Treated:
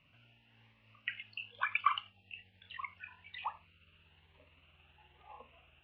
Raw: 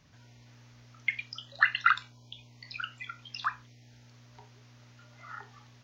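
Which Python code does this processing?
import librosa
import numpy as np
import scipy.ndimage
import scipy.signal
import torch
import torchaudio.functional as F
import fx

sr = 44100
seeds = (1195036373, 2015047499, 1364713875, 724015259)

y = fx.pitch_glide(x, sr, semitones=-10.0, runs='starting unshifted')
y = fx.ladder_lowpass(y, sr, hz=2900.0, resonance_pct=80)
y = fx.peak_eq(y, sr, hz=890.0, db=6.0, octaves=1.4)
y = y + 10.0 ** (-23.0 / 20.0) * np.pad(y, (int(84 * sr / 1000.0), 0))[:len(y)]
y = fx.notch_cascade(y, sr, direction='rising', hz=1.1)
y = y * librosa.db_to_amplitude(2.5)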